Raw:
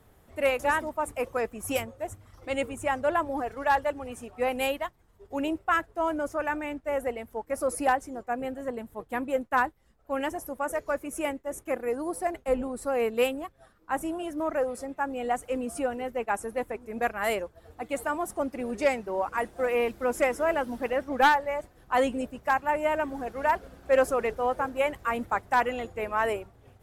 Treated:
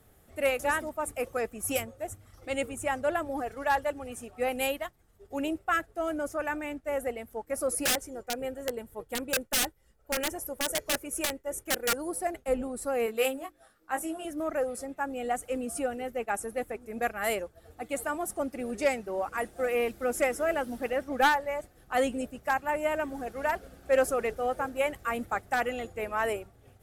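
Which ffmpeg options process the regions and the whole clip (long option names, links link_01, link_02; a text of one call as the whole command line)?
ffmpeg -i in.wav -filter_complex "[0:a]asettb=1/sr,asplit=3[link_01][link_02][link_03];[link_01]atrim=end=7.834[link_04];[link_02]atrim=start=7.83:end=12.12,asetpts=PTS-STARTPTS,afade=type=in:duration=0.004:curve=qsin,afade=type=out:start_time=4.286:duration=0.004:curve=qsin,bandreject=frequency=3900:width=28,aecho=1:1:2.1:0.35,atrim=end_sample=189189,aeval=exprs='(mod(11.2*val(0)+1,2)-1)/11.2':channel_layout=same[link_05];[link_03]atrim=start=12.116[link_06];[link_04][link_05]acrossfade=duration=0.004:curve1=hsin:curve2=qsin[link_07];[link_07][link_06]acrossfade=duration=0.004:curve1=qsin:curve2=hsin,asettb=1/sr,asplit=3[link_08][link_09][link_10];[link_08]atrim=end=13.064[link_11];[link_09]atrim=start=13.06:end=14.25,asetpts=PTS-STARTPTS,afade=type=in:duration=0.004:curve=qsin,afade=type=out:start_time=1.186:duration=0.004:curve=qsin,lowshelf=frequency=250:gain=-8.5,bandreject=frequency=50:width_type=h:width=6,bandreject=frequency=100:width_type=h:width=6,bandreject=frequency=150:width_type=h:width=6,bandreject=frequency=200:width_type=h:width=6,bandreject=frequency=250:width_type=h:width=6,bandreject=frequency=300:width_type=h:width=6,bandreject=frequency=350:width_type=h:width=6,asplit=2[link_12][link_13];[link_13]adelay=19,volume=-5.5dB[link_14];[link_12][link_14]amix=inputs=2:normalize=0,atrim=end_sample=52479[link_15];[link_10]atrim=start=14.246[link_16];[link_11][link_15]acrossfade=duration=0.004:curve1=hsin:curve2=qsin[link_17];[link_17][link_16]acrossfade=duration=0.004:curve1=qsin:curve2=hsin,equalizer=frequency=11000:width=0.53:gain=6.5,bandreject=frequency=990:width=5.7,volume=-2dB" out.wav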